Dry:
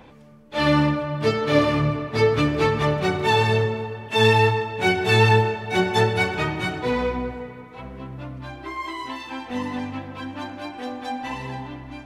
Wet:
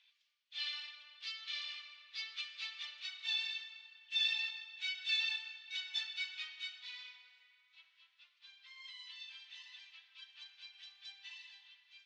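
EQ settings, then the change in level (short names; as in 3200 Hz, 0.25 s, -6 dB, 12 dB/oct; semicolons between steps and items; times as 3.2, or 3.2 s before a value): ladder high-pass 2900 Hz, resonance 35%; LPF 6700 Hz 12 dB/oct; air absorption 120 m; 0.0 dB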